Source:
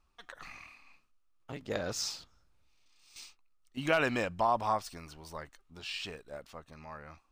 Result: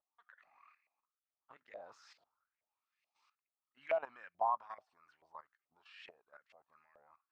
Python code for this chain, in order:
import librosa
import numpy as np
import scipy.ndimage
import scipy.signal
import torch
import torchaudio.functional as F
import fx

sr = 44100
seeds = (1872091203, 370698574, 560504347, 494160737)

y = fx.level_steps(x, sr, step_db=14)
y = fx.filter_lfo_bandpass(y, sr, shape='saw_up', hz=2.3, low_hz=610.0, high_hz=2200.0, q=5.2)
y = y * librosa.db_to_amplitude(1.0)